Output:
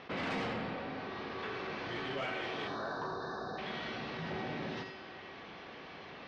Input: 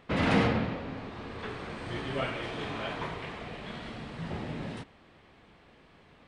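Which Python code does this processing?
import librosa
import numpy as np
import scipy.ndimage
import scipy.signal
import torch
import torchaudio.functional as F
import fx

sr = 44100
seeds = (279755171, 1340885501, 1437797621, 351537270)

p1 = scipy.signal.sosfilt(scipy.signal.butter(12, 6100.0, 'lowpass', fs=sr, output='sos'), x)
p2 = fx.spec_erase(p1, sr, start_s=2.68, length_s=0.9, low_hz=1800.0, high_hz=3600.0)
p3 = fx.highpass(p2, sr, hz=290.0, slope=6)
p4 = fx.rider(p3, sr, range_db=10, speed_s=2.0)
p5 = p3 + (p4 * librosa.db_to_amplitude(-2.0))
p6 = 10.0 ** (-20.0 / 20.0) * np.tanh(p5 / 10.0 ** (-20.0 / 20.0))
p7 = fx.comb_fb(p6, sr, f0_hz=380.0, decay_s=0.83, harmonics='all', damping=0.0, mix_pct=80)
p8 = p7 + 10.0 ** (-13.5 / 20.0) * np.pad(p7, (int(83 * sr / 1000.0), 0))[:len(p7)]
p9 = fx.env_flatten(p8, sr, amount_pct=50)
y = p9 * librosa.db_to_amplitude(2.0)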